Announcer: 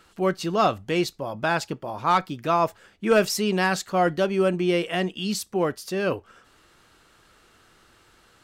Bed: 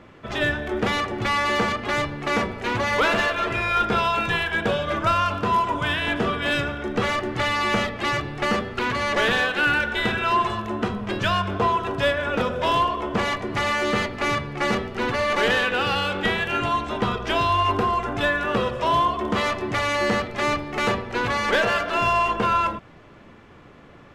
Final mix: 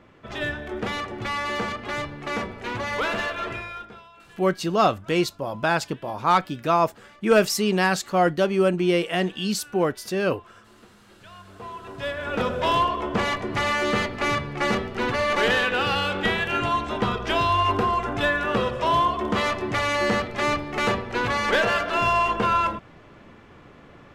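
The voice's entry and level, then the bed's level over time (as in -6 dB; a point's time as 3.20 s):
4.20 s, +1.5 dB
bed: 3.51 s -5.5 dB
4.08 s -28 dB
11.14 s -28 dB
12.46 s -0.5 dB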